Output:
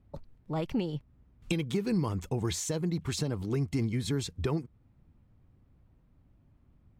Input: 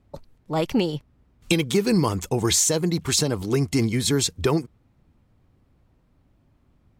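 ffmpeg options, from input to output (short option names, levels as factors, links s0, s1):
-af "bass=f=250:g=6,treble=f=4000:g=-7,acompressor=threshold=0.0355:ratio=1.5,volume=0.473"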